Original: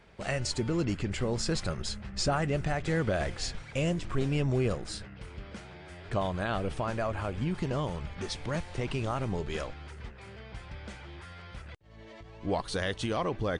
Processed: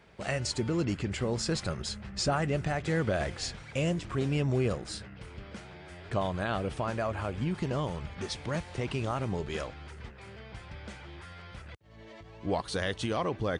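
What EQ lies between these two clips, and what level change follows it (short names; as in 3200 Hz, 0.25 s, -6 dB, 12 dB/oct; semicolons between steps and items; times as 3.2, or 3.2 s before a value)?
HPF 55 Hz; 0.0 dB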